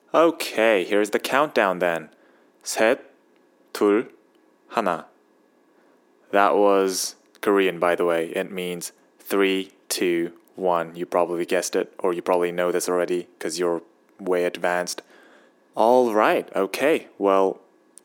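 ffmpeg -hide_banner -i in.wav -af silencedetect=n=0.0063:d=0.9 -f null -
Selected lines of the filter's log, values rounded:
silence_start: 5.07
silence_end: 6.30 | silence_duration: 1.24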